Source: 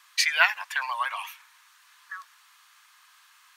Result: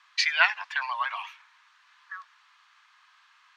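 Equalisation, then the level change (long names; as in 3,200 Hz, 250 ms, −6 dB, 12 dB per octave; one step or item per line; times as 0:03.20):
high-pass filter 600 Hz 24 dB per octave
high-frequency loss of the air 160 metres
dynamic equaliser 4,700 Hz, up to +5 dB, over −45 dBFS, Q 1.2
0.0 dB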